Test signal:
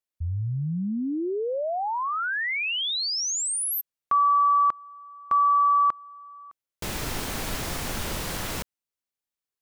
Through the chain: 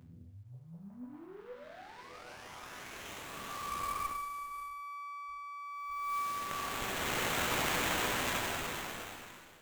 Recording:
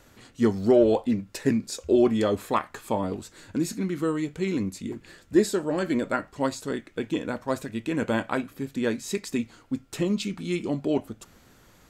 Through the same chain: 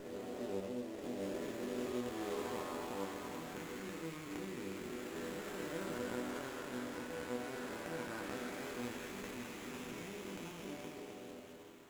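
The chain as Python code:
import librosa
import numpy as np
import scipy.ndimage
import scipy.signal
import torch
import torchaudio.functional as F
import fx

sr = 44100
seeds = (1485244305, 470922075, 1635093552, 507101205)

y = fx.spec_blur(x, sr, span_ms=1160.0)
y = fx.over_compress(y, sr, threshold_db=-30.0, ratio=-0.5)
y = fx.riaa(y, sr, side='recording')
y = fx.resonator_bank(y, sr, root=40, chord='minor', decay_s=0.59)
y = y + 10.0 ** (-18.5 / 20.0) * np.pad(y, (int(583 * sr / 1000.0), 0))[:len(y)]
y = fx.running_max(y, sr, window=9)
y = y * librosa.db_to_amplitude(9.5)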